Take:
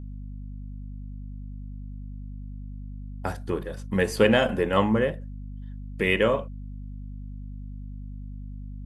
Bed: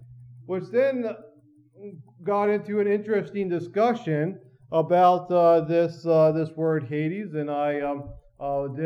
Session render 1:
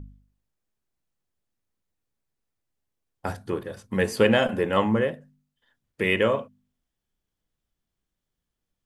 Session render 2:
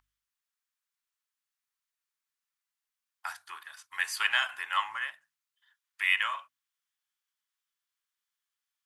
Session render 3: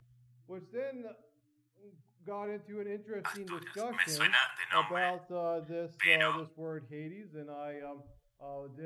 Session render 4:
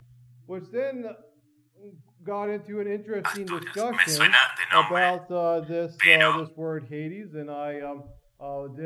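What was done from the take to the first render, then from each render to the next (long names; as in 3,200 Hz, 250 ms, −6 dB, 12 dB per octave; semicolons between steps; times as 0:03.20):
hum removal 50 Hz, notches 5
inverse Chebyshev high-pass filter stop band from 530 Hz, stop band 40 dB
mix in bed −17 dB
level +10 dB; brickwall limiter −2 dBFS, peak gain reduction 1 dB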